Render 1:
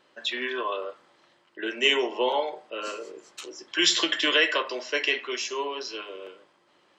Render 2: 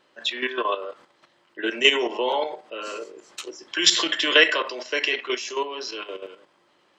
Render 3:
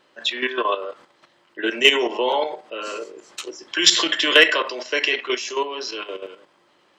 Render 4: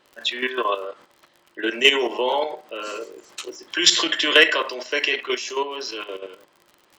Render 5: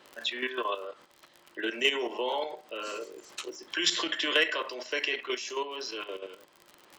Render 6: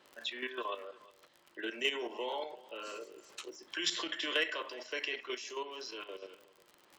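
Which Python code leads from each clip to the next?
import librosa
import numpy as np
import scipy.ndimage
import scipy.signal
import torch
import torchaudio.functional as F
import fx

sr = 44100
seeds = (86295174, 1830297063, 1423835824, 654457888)

y1 = fx.level_steps(x, sr, step_db=10)
y1 = F.gain(torch.from_numpy(y1), 7.0).numpy()
y2 = np.clip(y1, -10.0 ** (-4.0 / 20.0), 10.0 ** (-4.0 / 20.0))
y2 = F.gain(torch.from_numpy(y2), 3.0).numpy()
y3 = fx.dmg_crackle(y2, sr, seeds[0], per_s=65.0, level_db=-36.0)
y3 = F.gain(torch.from_numpy(y3), -1.0).numpy()
y4 = fx.band_squash(y3, sr, depth_pct=40)
y4 = F.gain(torch.from_numpy(y4), -8.5).numpy()
y5 = y4 + 10.0 ** (-21.0 / 20.0) * np.pad(y4, (int(359 * sr / 1000.0), 0))[:len(y4)]
y5 = F.gain(torch.from_numpy(y5), -7.0).numpy()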